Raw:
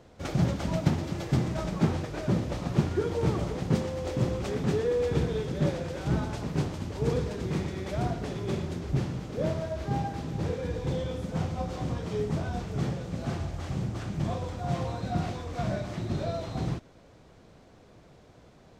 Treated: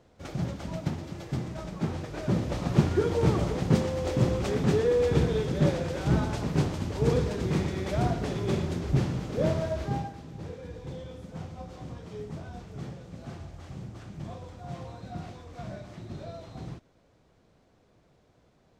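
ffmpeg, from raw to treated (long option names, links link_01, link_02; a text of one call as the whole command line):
ffmpeg -i in.wav -af "volume=3dB,afade=type=in:start_time=1.8:duration=0.98:silence=0.354813,afade=type=out:start_time=9.72:duration=0.44:silence=0.251189" out.wav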